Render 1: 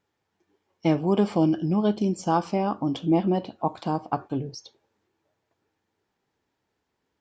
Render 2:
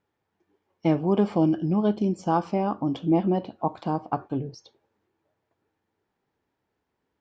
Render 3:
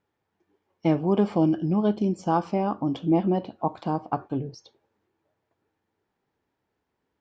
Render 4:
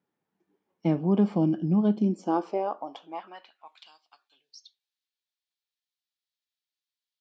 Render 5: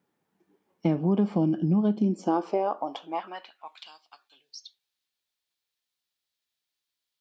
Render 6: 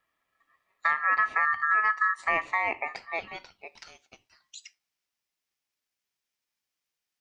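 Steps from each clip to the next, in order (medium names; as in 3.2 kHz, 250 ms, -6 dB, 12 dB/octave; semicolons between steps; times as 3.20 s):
treble shelf 3.8 kHz -11 dB
no audible change
high-pass sweep 180 Hz -> 3.9 kHz, 1.97–4.03 s; trim -6 dB
compression 2.5:1, threshold -29 dBFS, peak gain reduction 8.5 dB; trim +6 dB
ring modulator 1.5 kHz; trim +1.5 dB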